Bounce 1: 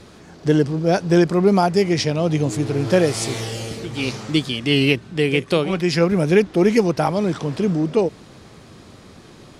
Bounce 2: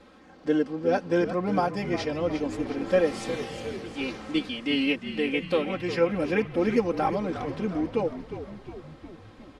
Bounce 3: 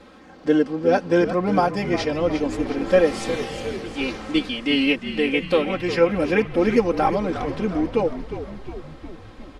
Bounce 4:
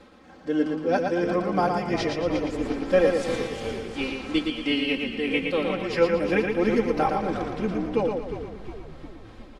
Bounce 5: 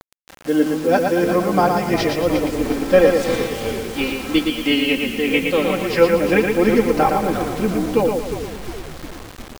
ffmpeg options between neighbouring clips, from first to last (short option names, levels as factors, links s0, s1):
-filter_complex "[0:a]bass=f=250:g=-7,treble=f=4000:g=-13,aecho=1:1:3.8:0.93,asplit=8[s0][s1][s2][s3][s4][s5][s6][s7];[s1]adelay=358,afreqshift=-52,volume=0.282[s8];[s2]adelay=716,afreqshift=-104,volume=0.172[s9];[s3]adelay=1074,afreqshift=-156,volume=0.105[s10];[s4]adelay=1432,afreqshift=-208,volume=0.0638[s11];[s5]adelay=1790,afreqshift=-260,volume=0.0389[s12];[s6]adelay=2148,afreqshift=-312,volume=0.0237[s13];[s7]adelay=2506,afreqshift=-364,volume=0.0145[s14];[s0][s8][s9][s10][s11][s12][s13][s14]amix=inputs=8:normalize=0,volume=0.376"
-af "asubboost=boost=3:cutoff=57,volume=2"
-af "tremolo=f=3:d=0.5,aecho=1:1:115|230|345|460|575:0.596|0.232|0.0906|0.0353|0.0138,volume=0.708"
-af "acrusher=bits=6:mix=0:aa=0.000001,volume=2.24"